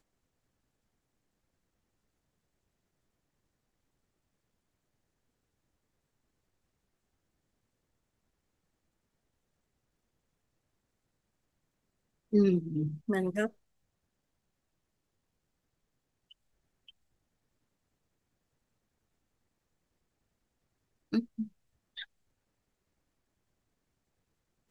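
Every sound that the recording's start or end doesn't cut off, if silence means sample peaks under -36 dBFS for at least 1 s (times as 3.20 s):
12.33–13.47 s
21.13–22.02 s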